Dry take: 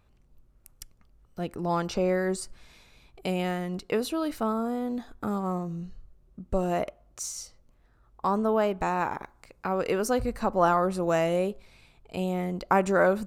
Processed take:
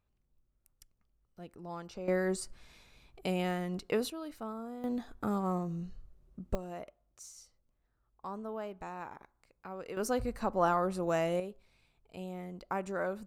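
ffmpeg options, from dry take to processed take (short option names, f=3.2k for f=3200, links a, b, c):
-af "asetnsamples=n=441:p=0,asendcmd='2.08 volume volume -4dB;4.1 volume volume -13dB;4.84 volume volume -3dB;6.55 volume volume -15.5dB;9.97 volume volume -6dB;11.4 volume volume -13dB',volume=-15.5dB"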